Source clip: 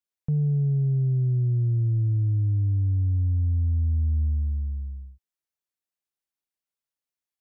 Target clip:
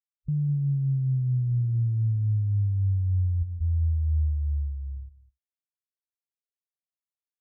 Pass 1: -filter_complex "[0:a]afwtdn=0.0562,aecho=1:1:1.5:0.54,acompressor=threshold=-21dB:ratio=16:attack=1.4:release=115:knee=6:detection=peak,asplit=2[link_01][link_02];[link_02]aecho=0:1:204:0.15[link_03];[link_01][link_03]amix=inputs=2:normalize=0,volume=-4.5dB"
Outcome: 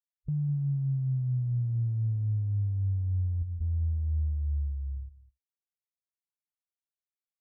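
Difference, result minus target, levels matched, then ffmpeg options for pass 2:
downward compressor: peak gain reduction +5 dB
-filter_complex "[0:a]afwtdn=0.0562,aecho=1:1:1.5:0.54,asplit=2[link_01][link_02];[link_02]aecho=0:1:204:0.15[link_03];[link_01][link_03]amix=inputs=2:normalize=0,volume=-4.5dB"

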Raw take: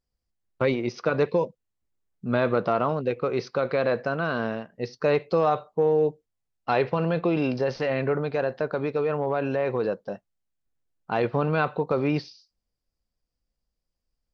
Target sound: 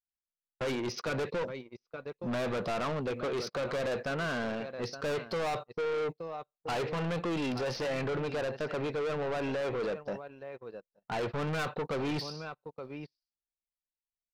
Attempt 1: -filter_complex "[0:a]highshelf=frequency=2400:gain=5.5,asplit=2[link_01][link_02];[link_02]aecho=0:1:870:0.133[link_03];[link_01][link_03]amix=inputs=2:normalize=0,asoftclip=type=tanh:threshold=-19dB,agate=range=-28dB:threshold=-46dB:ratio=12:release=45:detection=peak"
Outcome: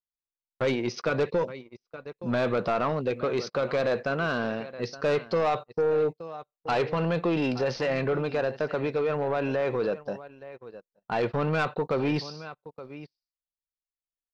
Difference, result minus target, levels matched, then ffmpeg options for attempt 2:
soft clipping: distortion −8 dB
-filter_complex "[0:a]highshelf=frequency=2400:gain=5.5,asplit=2[link_01][link_02];[link_02]aecho=0:1:870:0.133[link_03];[link_01][link_03]amix=inputs=2:normalize=0,asoftclip=type=tanh:threshold=-30dB,agate=range=-28dB:threshold=-46dB:ratio=12:release=45:detection=peak"

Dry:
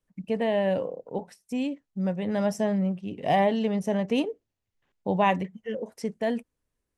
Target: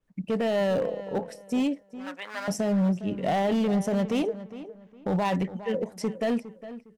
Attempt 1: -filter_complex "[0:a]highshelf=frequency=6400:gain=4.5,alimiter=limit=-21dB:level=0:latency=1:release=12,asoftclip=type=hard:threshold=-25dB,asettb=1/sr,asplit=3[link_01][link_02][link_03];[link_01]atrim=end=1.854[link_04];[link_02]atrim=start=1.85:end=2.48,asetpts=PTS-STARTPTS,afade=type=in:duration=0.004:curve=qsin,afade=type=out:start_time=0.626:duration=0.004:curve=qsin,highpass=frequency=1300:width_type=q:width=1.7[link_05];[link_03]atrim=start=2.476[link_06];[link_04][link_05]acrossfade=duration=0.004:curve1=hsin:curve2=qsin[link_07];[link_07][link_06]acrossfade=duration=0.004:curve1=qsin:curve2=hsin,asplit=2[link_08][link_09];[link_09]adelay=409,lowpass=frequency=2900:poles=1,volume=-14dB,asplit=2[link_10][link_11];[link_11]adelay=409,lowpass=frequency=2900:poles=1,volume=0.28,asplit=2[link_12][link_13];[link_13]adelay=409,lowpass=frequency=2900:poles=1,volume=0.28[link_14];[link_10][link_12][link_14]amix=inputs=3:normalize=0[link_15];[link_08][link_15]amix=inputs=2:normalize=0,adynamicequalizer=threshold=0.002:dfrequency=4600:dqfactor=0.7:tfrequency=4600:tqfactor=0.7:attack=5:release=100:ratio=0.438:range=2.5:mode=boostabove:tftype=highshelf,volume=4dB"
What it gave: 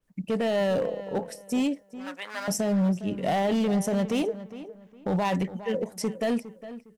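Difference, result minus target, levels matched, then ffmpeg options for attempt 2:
8,000 Hz band +5.5 dB
-filter_complex "[0:a]highshelf=frequency=6400:gain=-6.5,alimiter=limit=-21dB:level=0:latency=1:release=12,asoftclip=type=hard:threshold=-25dB,asettb=1/sr,asplit=3[link_01][link_02][link_03];[link_01]atrim=end=1.854[link_04];[link_02]atrim=start=1.85:end=2.48,asetpts=PTS-STARTPTS,afade=type=in:duration=0.004:curve=qsin,afade=type=out:start_time=0.626:duration=0.004:curve=qsin,highpass=frequency=1300:width_type=q:width=1.7[link_05];[link_03]atrim=start=2.476[link_06];[link_04][link_05]acrossfade=duration=0.004:curve1=hsin:curve2=qsin[link_07];[link_07][link_06]acrossfade=duration=0.004:curve1=qsin:curve2=hsin,asplit=2[link_08][link_09];[link_09]adelay=409,lowpass=frequency=2900:poles=1,volume=-14dB,asplit=2[link_10][link_11];[link_11]adelay=409,lowpass=frequency=2900:poles=1,volume=0.28,asplit=2[link_12][link_13];[link_13]adelay=409,lowpass=frequency=2900:poles=1,volume=0.28[link_14];[link_10][link_12][link_14]amix=inputs=3:normalize=0[link_15];[link_08][link_15]amix=inputs=2:normalize=0,adynamicequalizer=threshold=0.002:dfrequency=4600:dqfactor=0.7:tfrequency=4600:tqfactor=0.7:attack=5:release=100:ratio=0.438:range=2.5:mode=boostabove:tftype=highshelf,volume=4dB"

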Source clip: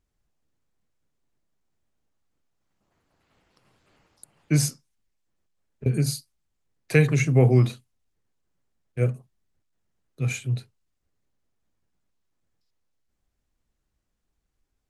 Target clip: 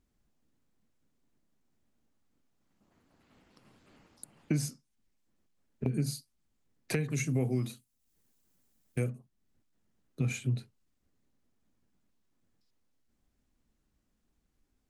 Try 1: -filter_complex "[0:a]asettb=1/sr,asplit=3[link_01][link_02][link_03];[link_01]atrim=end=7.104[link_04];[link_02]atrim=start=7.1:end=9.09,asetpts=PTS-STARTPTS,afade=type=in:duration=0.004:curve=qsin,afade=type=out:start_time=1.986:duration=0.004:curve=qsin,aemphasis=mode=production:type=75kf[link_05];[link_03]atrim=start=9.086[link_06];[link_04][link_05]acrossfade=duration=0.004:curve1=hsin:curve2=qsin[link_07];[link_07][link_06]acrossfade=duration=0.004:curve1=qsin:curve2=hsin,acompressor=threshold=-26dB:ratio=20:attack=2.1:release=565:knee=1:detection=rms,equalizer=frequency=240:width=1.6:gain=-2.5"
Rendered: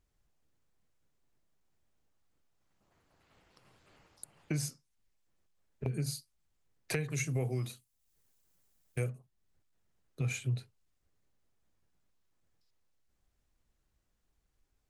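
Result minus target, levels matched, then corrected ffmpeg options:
250 Hz band −4.0 dB
-filter_complex "[0:a]asettb=1/sr,asplit=3[link_01][link_02][link_03];[link_01]atrim=end=7.104[link_04];[link_02]atrim=start=7.1:end=9.09,asetpts=PTS-STARTPTS,afade=type=in:duration=0.004:curve=qsin,afade=type=out:start_time=1.986:duration=0.004:curve=qsin,aemphasis=mode=production:type=75kf[link_05];[link_03]atrim=start=9.086[link_06];[link_04][link_05]acrossfade=duration=0.004:curve1=hsin:curve2=qsin[link_07];[link_07][link_06]acrossfade=duration=0.004:curve1=qsin:curve2=hsin,acompressor=threshold=-26dB:ratio=20:attack=2.1:release=565:knee=1:detection=rms,equalizer=frequency=240:width=1.6:gain=8.5"

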